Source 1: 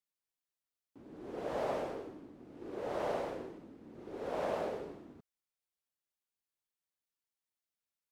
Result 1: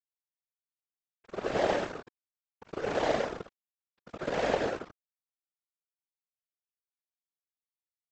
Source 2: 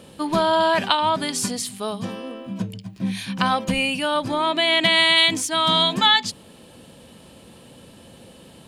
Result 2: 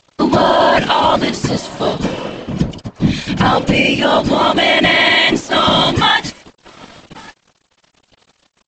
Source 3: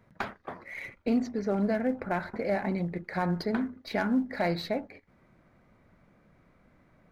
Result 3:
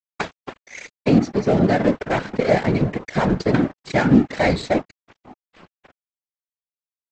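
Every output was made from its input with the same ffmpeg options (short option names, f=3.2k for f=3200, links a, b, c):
-filter_complex "[0:a]highpass=f=130:p=1,acrossover=split=2600[a][b];[b]acompressor=threshold=-37dB:ratio=4:attack=1:release=60[c];[a][c]amix=inputs=2:normalize=0,equalizer=f=1.1k:t=o:w=1.1:g=-6.5,asplit=2[d][e];[e]adelay=1136,lowpass=f=1.4k:p=1,volume=-17dB,asplit=2[f][g];[g]adelay=1136,lowpass=f=1.4k:p=1,volume=0.27,asplit=2[h][i];[i]adelay=1136,lowpass=f=1.4k:p=1,volume=0.27[j];[d][f][h][j]amix=inputs=4:normalize=0,aresample=16000,aeval=exprs='sgn(val(0))*max(abs(val(0))-0.00891,0)':c=same,aresample=44100,afftfilt=real='hypot(re,im)*cos(2*PI*random(0))':imag='hypot(re,im)*sin(2*PI*random(1))':win_size=512:overlap=0.75,alimiter=level_in=21.5dB:limit=-1dB:release=50:level=0:latency=1,volume=-1dB"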